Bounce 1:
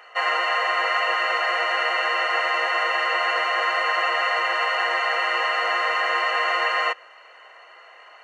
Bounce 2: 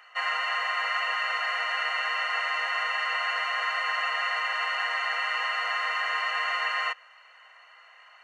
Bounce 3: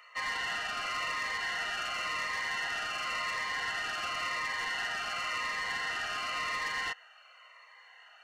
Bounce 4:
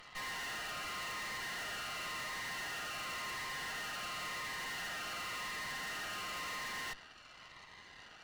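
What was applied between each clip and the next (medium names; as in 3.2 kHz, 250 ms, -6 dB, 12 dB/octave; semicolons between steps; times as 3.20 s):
high-pass 990 Hz 12 dB/octave; trim -4.5 dB
saturation -27.5 dBFS, distortion -12 dB; Shepard-style phaser falling 0.93 Hz
saturation -39.5 dBFS, distortion -9 dB; Chebyshev shaper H 2 -7 dB, 6 -14 dB, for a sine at -39.5 dBFS; trim -1 dB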